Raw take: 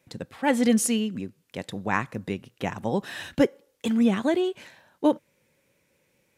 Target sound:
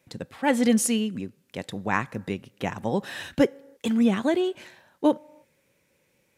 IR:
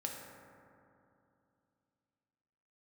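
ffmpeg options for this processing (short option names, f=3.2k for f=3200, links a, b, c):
-filter_complex "[0:a]asplit=2[a][b];[1:a]atrim=start_sample=2205,afade=t=out:st=0.38:d=0.01,atrim=end_sample=17199,lowshelf=f=500:g=-11[c];[b][c]afir=irnorm=-1:irlink=0,volume=-21.5dB[d];[a][d]amix=inputs=2:normalize=0"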